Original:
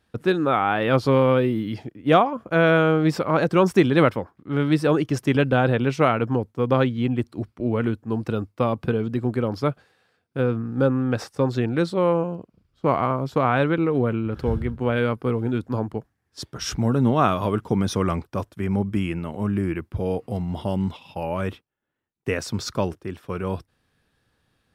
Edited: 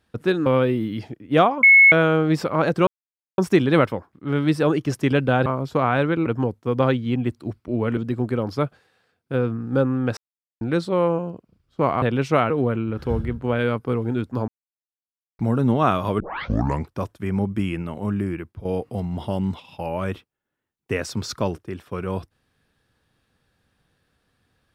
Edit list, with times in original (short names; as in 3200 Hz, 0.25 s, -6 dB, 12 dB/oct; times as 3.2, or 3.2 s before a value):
0.46–1.21 cut
2.38–2.67 bleep 2190 Hz -7.5 dBFS
3.62 insert silence 0.51 s
5.7–6.18 swap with 13.07–13.87
7.89–9.02 cut
11.22–11.66 mute
15.85–16.76 mute
17.57 tape start 0.64 s
19.35–20.02 fade out equal-power, to -12 dB